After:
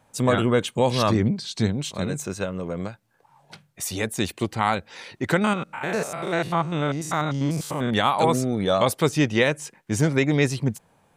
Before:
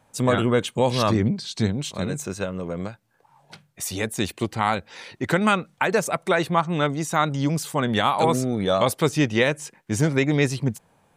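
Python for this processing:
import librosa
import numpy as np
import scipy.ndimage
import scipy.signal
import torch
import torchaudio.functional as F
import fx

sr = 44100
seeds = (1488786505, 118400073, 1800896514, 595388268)

y = fx.spec_steps(x, sr, hold_ms=100, at=(5.44, 7.93))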